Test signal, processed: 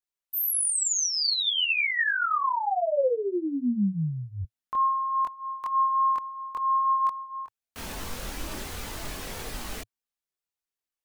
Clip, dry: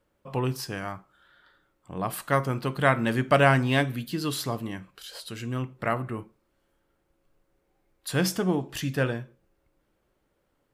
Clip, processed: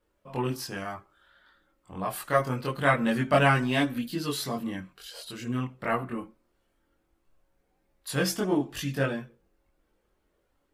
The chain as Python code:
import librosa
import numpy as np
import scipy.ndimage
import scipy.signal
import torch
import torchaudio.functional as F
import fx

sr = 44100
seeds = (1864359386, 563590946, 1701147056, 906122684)

y = fx.peak_eq(x, sr, hz=110.0, db=-7.0, octaves=0.33)
y = fx.chorus_voices(y, sr, voices=4, hz=0.22, base_ms=23, depth_ms=2.5, mix_pct=55)
y = F.gain(torch.from_numpy(y), 2.0).numpy()